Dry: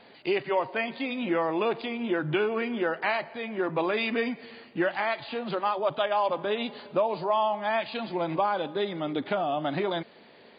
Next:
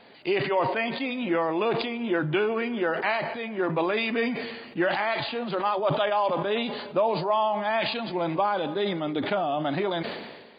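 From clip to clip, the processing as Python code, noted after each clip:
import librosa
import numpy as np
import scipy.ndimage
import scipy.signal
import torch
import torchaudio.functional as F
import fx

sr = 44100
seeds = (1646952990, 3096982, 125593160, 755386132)

y = fx.sustainer(x, sr, db_per_s=44.0)
y = y * 10.0 ** (1.0 / 20.0)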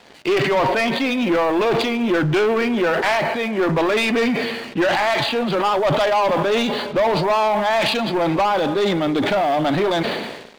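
y = fx.leveller(x, sr, passes=3)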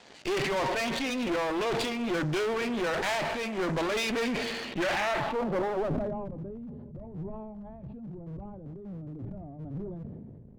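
y = fx.filter_sweep_lowpass(x, sr, from_hz=7200.0, to_hz=110.0, start_s=4.44, end_s=6.34, q=1.6)
y = fx.clip_asym(y, sr, top_db=-32.0, bottom_db=-13.0)
y = fx.sustainer(y, sr, db_per_s=26.0)
y = y * 10.0 ** (-7.0 / 20.0)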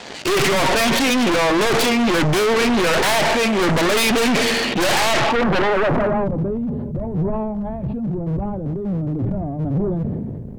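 y = fx.fold_sine(x, sr, drive_db=11, ceiling_db=-18.5)
y = y * 10.0 ** (3.5 / 20.0)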